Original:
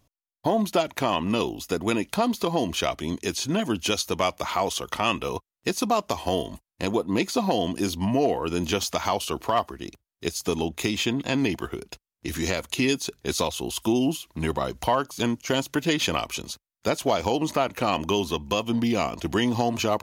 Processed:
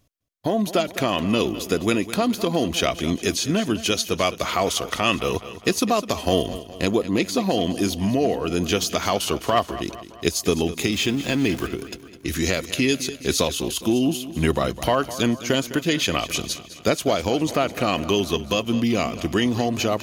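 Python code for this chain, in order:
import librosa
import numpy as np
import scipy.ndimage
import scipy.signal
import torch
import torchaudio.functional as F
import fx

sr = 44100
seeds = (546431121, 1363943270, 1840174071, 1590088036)

y = fx.zero_step(x, sr, step_db=-33.5, at=(10.92, 11.67))
y = fx.peak_eq(y, sr, hz=900.0, db=-9.0, octaves=0.45)
y = fx.rider(y, sr, range_db=4, speed_s=0.5)
y = fx.echo_feedback(y, sr, ms=207, feedback_pct=52, wet_db=-14.5)
y = y * librosa.db_to_amplitude(4.0)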